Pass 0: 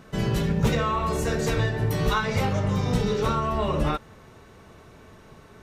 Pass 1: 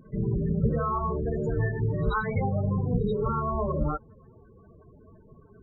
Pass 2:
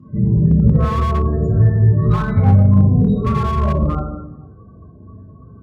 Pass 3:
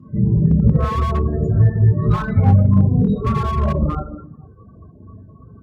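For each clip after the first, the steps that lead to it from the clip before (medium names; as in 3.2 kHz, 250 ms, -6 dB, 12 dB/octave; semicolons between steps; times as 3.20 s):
loudest bins only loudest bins 16; pre-echo 82 ms -24 dB; trim -2 dB
reverberation RT60 1.0 s, pre-delay 3 ms, DRR -7 dB; slew-rate limiter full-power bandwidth 340 Hz; trim -11.5 dB
reverb removal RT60 0.6 s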